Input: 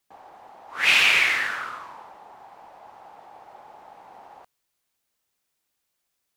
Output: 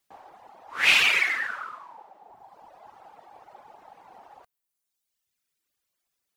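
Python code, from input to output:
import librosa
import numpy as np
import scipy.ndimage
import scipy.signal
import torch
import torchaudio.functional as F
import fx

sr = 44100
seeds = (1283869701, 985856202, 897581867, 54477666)

y = fx.highpass(x, sr, hz=150.0, slope=12, at=(1.09, 2.3))
y = fx.dereverb_blind(y, sr, rt60_s=1.6)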